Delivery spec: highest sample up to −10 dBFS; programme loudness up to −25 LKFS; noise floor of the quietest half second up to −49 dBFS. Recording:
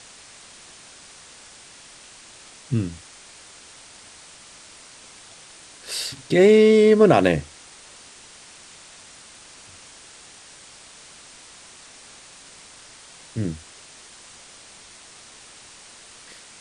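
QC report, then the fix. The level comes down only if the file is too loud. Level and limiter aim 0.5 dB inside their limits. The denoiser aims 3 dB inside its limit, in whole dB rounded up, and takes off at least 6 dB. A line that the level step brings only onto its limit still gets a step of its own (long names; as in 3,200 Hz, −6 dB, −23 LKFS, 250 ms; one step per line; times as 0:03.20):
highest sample −3.5 dBFS: out of spec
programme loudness −18.5 LKFS: out of spec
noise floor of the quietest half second −46 dBFS: out of spec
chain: level −7 dB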